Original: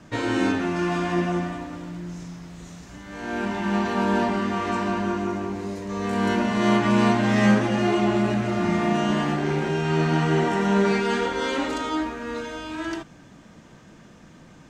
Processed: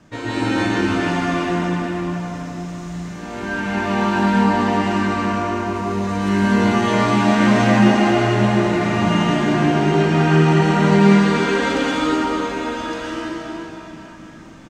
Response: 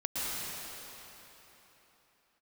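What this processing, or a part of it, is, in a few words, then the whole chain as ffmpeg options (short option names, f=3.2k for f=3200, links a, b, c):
cave: -filter_complex "[0:a]aecho=1:1:259:0.237[a];[1:a]atrim=start_sample=2205[b];[a][b]afir=irnorm=-1:irlink=0,volume=-1dB"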